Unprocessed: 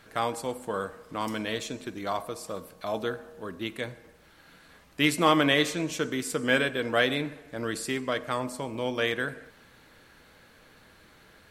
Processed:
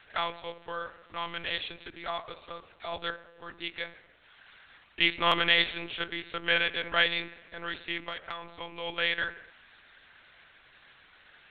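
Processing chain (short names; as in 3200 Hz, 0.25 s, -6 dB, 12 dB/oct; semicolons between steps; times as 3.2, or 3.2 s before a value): monotone LPC vocoder at 8 kHz 170 Hz; tilt shelf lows -9.5 dB, about 800 Hz; 8–8.49 compressor 6:1, threshold -30 dBFS, peak gain reduction 8.5 dB; stuck buffer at 5.27, samples 512, times 3; gain -4 dB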